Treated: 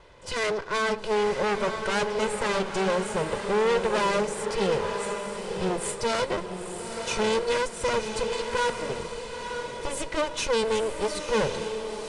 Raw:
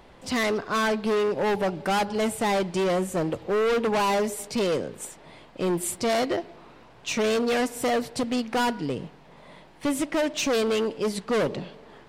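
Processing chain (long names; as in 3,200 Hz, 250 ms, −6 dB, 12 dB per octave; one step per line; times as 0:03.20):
lower of the sound and its delayed copy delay 2 ms
feedback delay with all-pass diffusion 959 ms, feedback 41%, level −6 dB
downsampling to 22,050 Hz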